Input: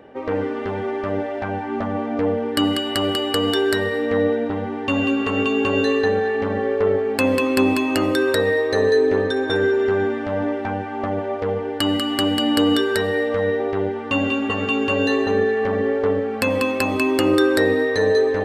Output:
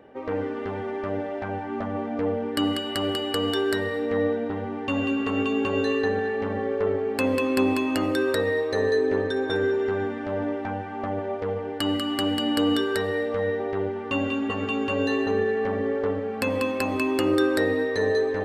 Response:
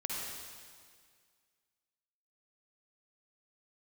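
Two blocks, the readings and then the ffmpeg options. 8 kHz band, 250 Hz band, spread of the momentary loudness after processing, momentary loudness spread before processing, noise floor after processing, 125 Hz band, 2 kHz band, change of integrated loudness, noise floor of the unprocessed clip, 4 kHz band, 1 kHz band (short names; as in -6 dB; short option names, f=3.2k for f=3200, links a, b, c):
-6.5 dB, -4.5 dB, 7 LU, 8 LU, -32 dBFS, -4.5 dB, -6.0 dB, -5.5 dB, -27 dBFS, -6.0 dB, -5.0 dB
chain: -filter_complex "[0:a]asplit=2[a][b];[1:a]atrim=start_sample=2205,asetrate=43218,aresample=44100,lowpass=3.1k[c];[b][c]afir=irnorm=-1:irlink=0,volume=-14.5dB[d];[a][d]amix=inputs=2:normalize=0,volume=-6.5dB"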